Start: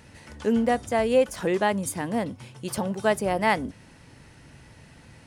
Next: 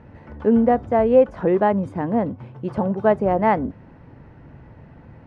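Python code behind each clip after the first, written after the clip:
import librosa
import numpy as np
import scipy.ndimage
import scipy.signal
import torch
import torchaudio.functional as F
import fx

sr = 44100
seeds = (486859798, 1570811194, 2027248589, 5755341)

y = scipy.signal.sosfilt(scipy.signal.butter(2, 1100.0, 'lowpass', fs=sr, output='sos'), x)
y = F.gain(torch.from_numpy(y), 6.5).numpy()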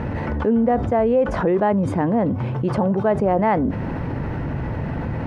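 y = fx.env_flatten(x, sr, amount_pct=70)
y = F.gain(torch.from_numpy(y), -5.5).numpy()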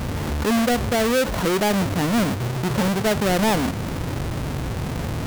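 y = fx.halfwave_hold(x, sr)
y = F.gain(torch.from_numpy(y), -5.5).numpy()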